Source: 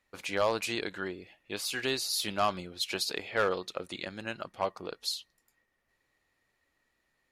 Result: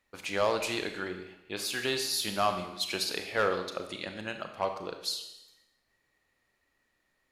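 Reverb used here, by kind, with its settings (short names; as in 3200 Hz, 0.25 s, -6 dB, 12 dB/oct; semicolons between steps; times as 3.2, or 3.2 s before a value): Schroeder reverb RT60 0.93 s, combs from 29 ms, DRR 6.5 dB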